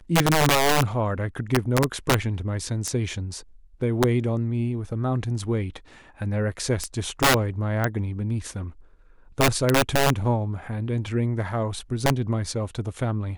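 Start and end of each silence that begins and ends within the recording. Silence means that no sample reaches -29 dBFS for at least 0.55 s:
8.67–9.38

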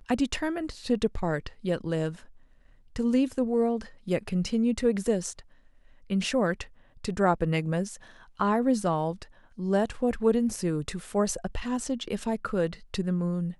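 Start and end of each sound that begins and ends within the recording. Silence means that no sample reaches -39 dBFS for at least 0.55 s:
2.96–5.4

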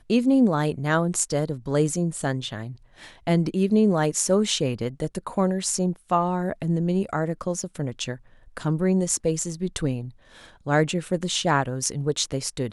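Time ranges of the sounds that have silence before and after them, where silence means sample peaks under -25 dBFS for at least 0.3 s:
3.27–8.14
8.57–10.01

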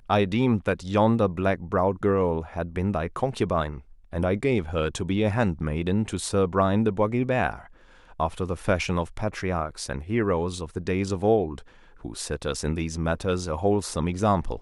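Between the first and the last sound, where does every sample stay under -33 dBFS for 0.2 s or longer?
3.78–4.13
7.58–8.2
11.59–12.05

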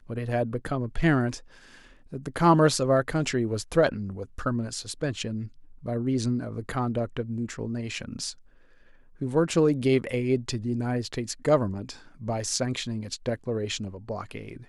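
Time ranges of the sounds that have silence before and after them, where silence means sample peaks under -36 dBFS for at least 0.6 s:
2.13–8.32

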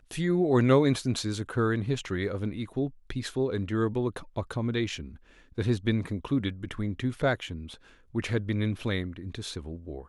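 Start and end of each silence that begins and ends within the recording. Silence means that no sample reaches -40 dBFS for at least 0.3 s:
5.15–5.58
7.75–8.15

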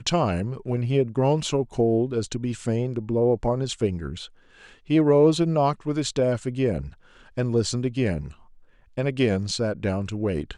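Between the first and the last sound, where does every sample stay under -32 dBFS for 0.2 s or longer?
4.25–4.9
6.88–7.37
8.28–8.98

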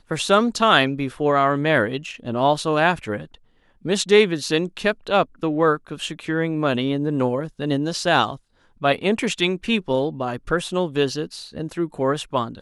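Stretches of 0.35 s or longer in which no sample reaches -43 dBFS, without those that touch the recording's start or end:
3.35–3.85
8.37–8.81

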